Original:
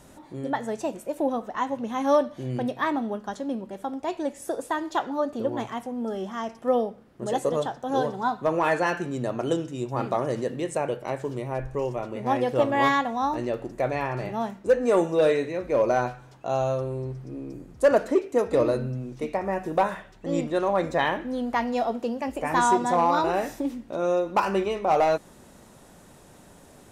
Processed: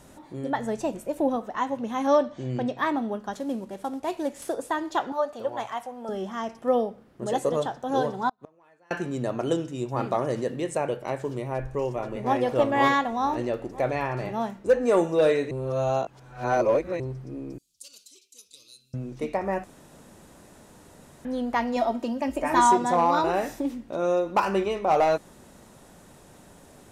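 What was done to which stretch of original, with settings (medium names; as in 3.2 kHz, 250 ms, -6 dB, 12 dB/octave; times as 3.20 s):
0.58–1.36 s: bass shelf 130 Hz +10.5 dB
2.07–2.78 s: steep low-pass 8.5 kHz 96 dB/octave
3.33–4.54 s: CVSD coder 64 kbps
5.12–6.09 s: resonant low shelf 470 Hz -10 dB, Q 1.5
8.29–8.91 s: inverted gate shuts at -21 dBFS, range -36 dB
11.46–12.44 s: echo throw 490 ms, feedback 60%, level -11 dB
15.51–17.00 s: reverse
17.58–18.94 s: inverse Chebyshev high-pass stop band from 1.9 kHz
19.64–21.25 s: room tone
21.76–22.72 s: comb 3.2 ms, depth 63%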